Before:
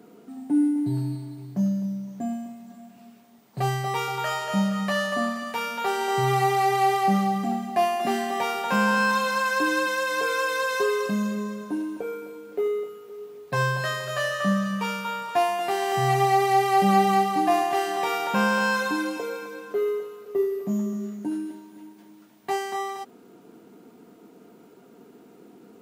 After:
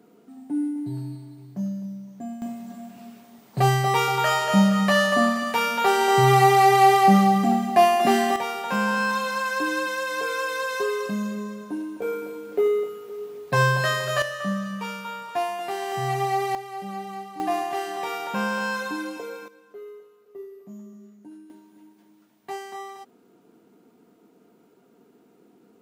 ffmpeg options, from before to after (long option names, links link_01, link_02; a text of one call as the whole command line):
ffmpeg -i in.wav -af "asetnsamples=nb_out_samples=441:pad=0,asendcmd='2.42 volume volume 6dB;8.36 volume volume -2dB;12.02 volume volume 4.5dB;14.22 volume volume -4dB;16.55 volume volume -15dB;17.4 volume volume -4dB;19.48 volume volume -15.5dB;21.5 volume volume -7dB',volume=-5dB" out.wav